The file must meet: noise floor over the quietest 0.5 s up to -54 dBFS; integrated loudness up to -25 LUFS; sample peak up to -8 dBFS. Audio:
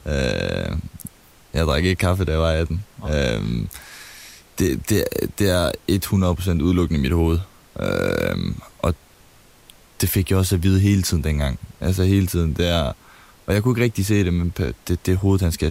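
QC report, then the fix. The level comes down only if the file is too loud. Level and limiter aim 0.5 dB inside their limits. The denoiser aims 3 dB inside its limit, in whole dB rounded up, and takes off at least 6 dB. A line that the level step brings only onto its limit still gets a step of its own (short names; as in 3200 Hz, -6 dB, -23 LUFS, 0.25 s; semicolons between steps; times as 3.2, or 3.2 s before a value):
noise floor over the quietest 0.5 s -50 dBFS: fail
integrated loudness -21.0 LUFS: fail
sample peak -5.5 dBFS: fail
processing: gain -4.5 dB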